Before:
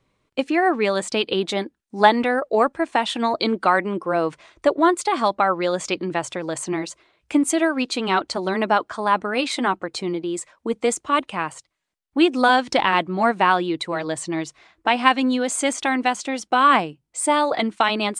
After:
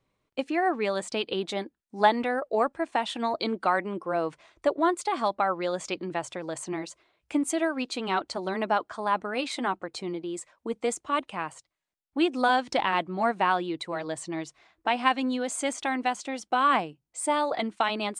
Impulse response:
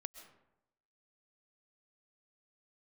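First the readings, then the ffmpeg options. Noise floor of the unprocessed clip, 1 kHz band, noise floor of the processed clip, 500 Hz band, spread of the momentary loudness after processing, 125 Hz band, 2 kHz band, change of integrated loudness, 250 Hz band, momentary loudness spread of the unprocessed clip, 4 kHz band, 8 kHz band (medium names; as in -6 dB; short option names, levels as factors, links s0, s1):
-74 dBFS, -6.5 dB, -81 dBFS, -6.5 dB, 11 LU, -8.0 dB, -8.0 dB, -7.0 dB, -8.0 dB, 10 LU, -8.0 dB, -8.0 dB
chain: -af "equalizer=f=710:t=o:w=0.77:g=2.5,volume=0.398"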